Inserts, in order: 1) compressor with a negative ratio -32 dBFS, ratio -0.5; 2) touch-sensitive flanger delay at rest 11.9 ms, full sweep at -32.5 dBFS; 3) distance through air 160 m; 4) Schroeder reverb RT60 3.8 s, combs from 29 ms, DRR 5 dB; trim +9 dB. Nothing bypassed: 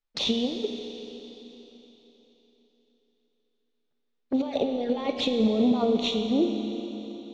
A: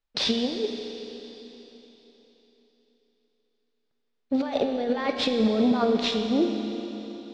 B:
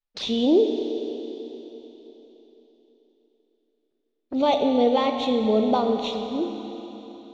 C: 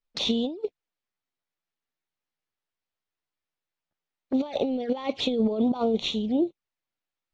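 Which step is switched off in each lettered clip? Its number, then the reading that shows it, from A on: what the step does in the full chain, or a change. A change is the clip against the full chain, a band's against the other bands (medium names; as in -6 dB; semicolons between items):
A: 2, 2 kHz band +4.5 dB; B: 1, 1 kHz band +8.5 dB; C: 4, momentary loudness spread change -11 LU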